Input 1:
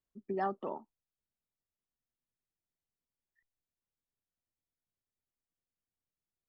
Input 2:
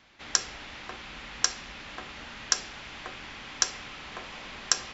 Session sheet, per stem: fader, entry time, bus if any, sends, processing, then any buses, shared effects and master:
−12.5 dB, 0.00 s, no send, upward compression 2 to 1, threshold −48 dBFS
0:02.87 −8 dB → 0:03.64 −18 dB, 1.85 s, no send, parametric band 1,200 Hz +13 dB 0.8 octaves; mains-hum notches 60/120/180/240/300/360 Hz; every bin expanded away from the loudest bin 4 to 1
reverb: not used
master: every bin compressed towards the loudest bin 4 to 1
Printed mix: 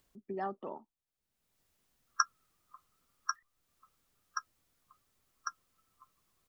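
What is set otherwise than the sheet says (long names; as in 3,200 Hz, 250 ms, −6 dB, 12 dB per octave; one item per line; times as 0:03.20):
stem 1 −12.5 dB → −3.5 dB
master: missing every bin compressed towards the loudest bin 4 to 1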